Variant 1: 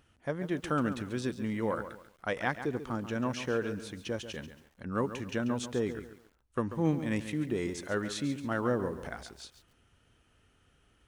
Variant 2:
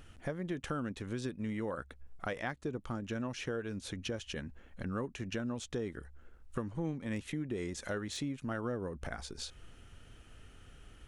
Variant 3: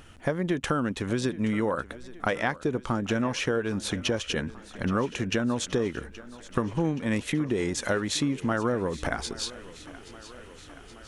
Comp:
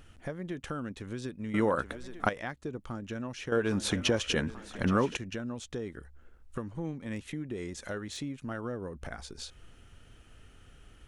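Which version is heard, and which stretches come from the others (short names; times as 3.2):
2
1.54–2.29 from 3
3.52–5.17 from 3
not used: 1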